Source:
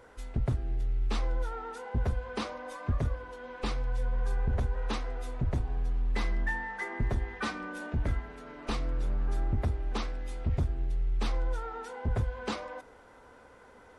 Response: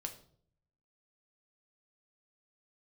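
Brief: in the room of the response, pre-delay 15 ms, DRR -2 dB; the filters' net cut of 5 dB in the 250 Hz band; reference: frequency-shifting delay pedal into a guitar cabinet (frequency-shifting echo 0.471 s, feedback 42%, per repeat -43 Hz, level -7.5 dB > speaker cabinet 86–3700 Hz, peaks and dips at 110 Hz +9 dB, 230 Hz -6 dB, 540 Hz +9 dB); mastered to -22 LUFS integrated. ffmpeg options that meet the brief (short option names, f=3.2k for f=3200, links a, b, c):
-filter_complex "[0:a]equalizer=f=250:t=o:g=-5,asplit=2[a][b];[1:a]atrim=start_sample=2205,adelay=15[c];[b][c]afir=irnorm=-1:irlink=0,volume=4dB[d];[a][d]amix=inputs=2:normalize=0,asplit=6[e][f][g][h][i][j];[f]adelay=471,afreqshift=-43,volume=-7.5dB[k];[g]adelay=942,afreqshift=-86,volume=-15dB[l];[h]adelay=1413,afreqshift=-129,volume=-22.6dB[m];[i]adelay=1884,afreqshift=-172,volume=-30.1dB[n];[j]adelay=2355,afreqshift=-215,volume=-37.6dB[o];[e][k][l][m][n][o]amix=inputs=6:normalize=0,highpass=86,equalizer=f=110:t=q:w=4:g=9,equalizer=f=230:t=q:w=4:g=-6,equalizer=f=540:t=q:w=4:g=9,lowpass=f=3.7k:w=0.5412,lowpass=f=3.7k:w=1.3066,volume=9.5dB"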